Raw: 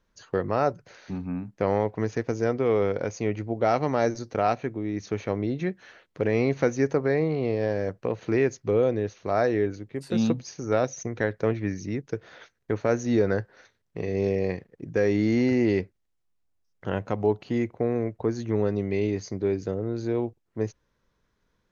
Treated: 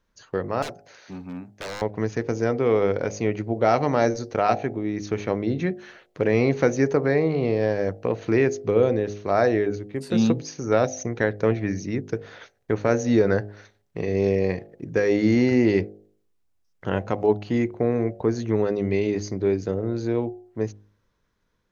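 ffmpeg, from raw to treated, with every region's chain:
-filter_complex "[0:a]asettb=1/sr,asplit=3[a][b][c];[a]atrim=end=0.624[d];[b]atrim=start=0.62:end=1.82,asetpts=PTS-STARTPTS,afade=t=in:d=0.004:c=qsin,afade=t=out:st=1.196:d=0.004:c=qsin,highpass=57,bass=f=250:g=-7,treble=f=4k:g=3,aeval=exprs='0.0355*(abs(mod(val(0)/0.0355+3,4)-2)-1)':c=same[e];[c]atrim=start=1.816[f];[d][e]acrossfade=d=0.004:c1=hsin:c2=qsin[g];[g][f]acrossfade=d=0.004:c1=qsin:c2=hsin,bandreject=f=51.54:t=h:w=4,bandreject=f=103.08:t=h:w=4,bandreject=f=154.62:t=h:w=4,bandreject=f=206.16:t=h:w=4,bandreject=f=257.7:t=h:w=4,bandreject=f=309.24:t=h:w=4,bandreject=f=360.78:t=h:w=4,bandreject=f=412.32:t=h:w=4,bandreject=f=463.86:t=h:w=4,bandreject=f=515.4:t=h:w=4,bandreject=f=566.94:t=h:w=4,bandreject=f=618.48:t=h:w=4,bandreject=f=670.02:t=h:w=4,bandreject=f=721.56:t=h:w=4,bandreject=f=773.1:t=h:w=4,bandreject=f=824.64:t=h:w=4,dynaudnorm=f=600:g=7:m=4dB"

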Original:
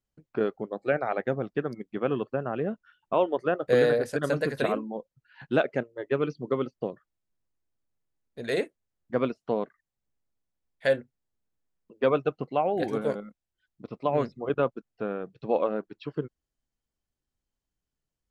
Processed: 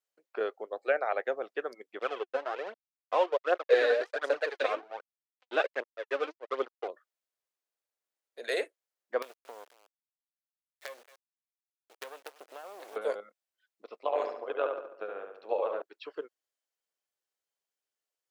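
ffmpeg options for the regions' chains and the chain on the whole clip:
-filter_complex "[0:a]asettb=1/sr,asplit=3[a][b][c];[a]atrim=end=1.994[d];[b]atrim=start=1.99:end=6.88,asetpts=PTS-STARTPTS,afade=t=in:d=0.004:c=qsin,afade=t=out:st=4.886:d=0.004:c=qsin,aeval=exprs='sgn(val(0))*max(abs(val(0))-0.0126,0)':c=same,aphaser=in_gain=1:out_gain=1:delay=4.1:decay=0.58:speed=1.3:type=triangular,highpass=220,lowpass=4.5k[e];[c]atrim=start=6.876[f];[d][e]acrossfade=d=0.004:c1=hsin:c2=qsin[g];[g][f]acrossfade=d=0.004:c1=qsin:c2=hsin,asettb=1/sr,asplit=3[h][i][j];[h]atrim=end=9.224[k];[i]atrim=start=9.22:end=12.96,asetpts=PTS-STARTPTS,afade=t=in:d=0.004:c=qsin,afade=t=out:st=3.736:d=0.004:c=qsin,acompressor=threshold=-34dB:ratio=12:attack=3.2:release=140:knee=1:detection=peak,aecho=1:1:227:0.106,atrim=end_sample=164934,acrusher=bits=6:dc=4:mix=0:aa=0.000001[l];[j]atrim=start=12.956[m];[k][l]acrossfade=d=0.004:c1=hsin:c2=qsin[n];[n][m]acrossfade=d=0.004:c1=qsin:c2=hsin,asettb=1/sr,asplit=3[o][p][q];[o]atrim=end=13.964[r];[p]atrim=start=13.96:end=15.82,asetpts=PTS-STARTPTS,afade=t=in:d=0.004:c=qsin,afade=t=out:st=1.856:d=0.004:c=qsin,tremolo=f=96:d=0.75,asplit=2[s][t];[t]adelay=71,lowpass=f=3.8k:p=1,volume=-4.5dB,asplit=2[u][v];[v]adelay=71,lowpass=f=3.8k:p=1,volume=0.52,asplit=2[w][x];[x]adelay=71,lowpass=f=3.8k:p=1,volume=0.52,asplit=2[y][z];[z]adelay=71,lowpass=f=3.8k:p=1,volume=0.52,asplit=2[aa][ab];[ab]adelay=71,lowpass=f=3.8k:p=1,volume=0.52,asplit=2[ac][ad];[ad]adelay=71,lowpass=f=3.8k:p=1,volume=0.52,asplit=2[ae][af];[af]adelay=71,lowpass=f=3.8k:p=1,volume=0.52[ag];[s][u][w][y][aa][ac][ae][ag]amix=inputs=8:normalize=0,atrim=end_sample=82026[ah];[q]atrim=start=15.816[ai];[r][ah]acrossfade=d=0.004:c1=hsin:c2=qsin[aj];[aj][ai]acrossfade=d=0.004:c1=qsin:c2=hsin,highpass=f=470:w=0.5412,highpass=f=470:w=1.3066,equalizer=f=910:t=o:w=0.77:g=-2.5"

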